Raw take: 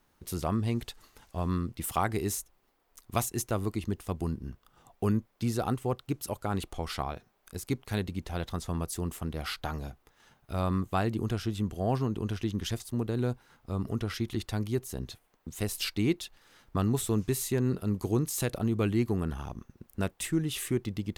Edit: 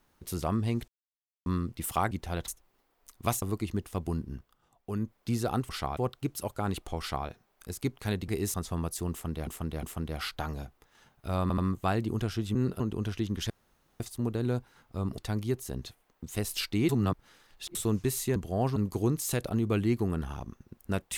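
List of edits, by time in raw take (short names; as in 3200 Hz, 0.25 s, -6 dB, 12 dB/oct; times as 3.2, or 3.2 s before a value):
0.88–1.46 mute
2.11–2.37 swap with 8.14–8.51
3.31–3.56 cut
4.5–5.28 dip -10 dB, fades 0.37 s quadratic
6.85–7.13 copy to 5.83
9.08–9.44 loop, 3 plays
10.67 stutter 0.08 s, 3 plays
11.64–12.04 swap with 17.6–17.85
12.74 insert room tone 0.50 s
13.92–14.42 cut
16.13–16.99 reverse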